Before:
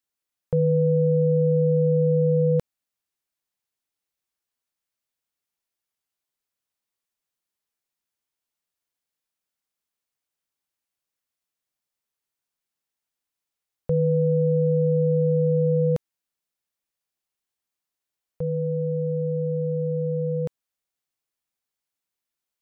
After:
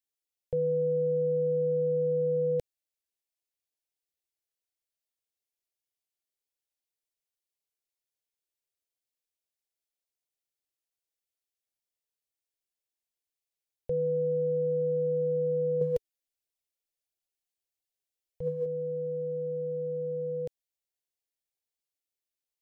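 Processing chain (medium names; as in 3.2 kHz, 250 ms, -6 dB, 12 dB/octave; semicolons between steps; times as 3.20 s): static phaser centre 480 Hz, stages 4; 15.81–18.66 s: phaser 1.5 Hz, delay 4.4 ms, feedback 49%; trim -5 dB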